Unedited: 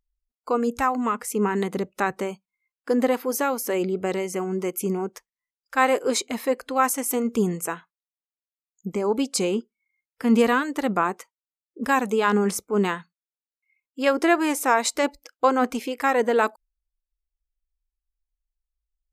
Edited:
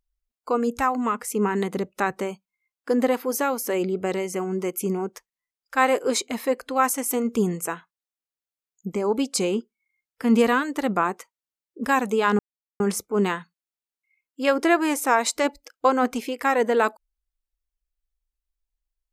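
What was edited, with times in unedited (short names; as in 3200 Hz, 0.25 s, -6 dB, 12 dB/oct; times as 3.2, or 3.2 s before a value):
12.39 insert silence 0.41 s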